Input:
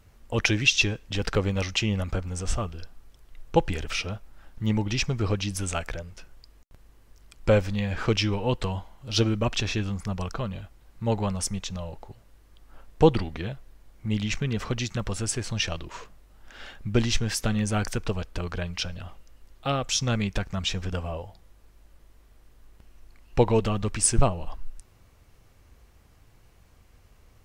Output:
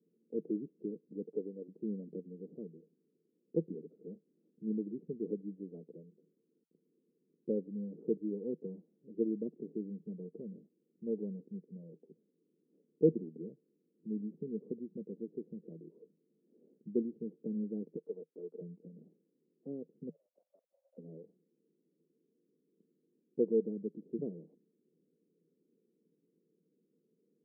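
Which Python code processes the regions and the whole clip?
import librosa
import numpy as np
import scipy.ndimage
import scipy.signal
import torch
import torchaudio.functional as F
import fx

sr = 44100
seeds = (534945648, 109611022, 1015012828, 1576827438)

y = fx.chain(x, sr, fx.bessel_highpass(hz=400.0, order=2),
    fx.doppler_dist(depth_ms=0.35), at=(1.26, 1.68))
y = fx.chain(y, sr, fx.highpass(hz=720.0, slope=12),
    fx.leveller(passes=3), at=(17.96, 18.61))
y = fx.chain(y, sr, fx.brickwall_highpass(low_hz=530.0),
    fx.over_compress(threshold_db=-37.0, ratio=-0.5), at=(20.09, 20.98))
y = scipy.signal.sosfilt(scipy.signal.cheby1(4, 1.0, [160.0, 460.0], 'bandpass', fs=sr, output='sos'), y)
y = fx.low_shelf(y, sr, hz=200.0, db=-11.0)
y = y * 10.0 ** (-3.5 / 20.0)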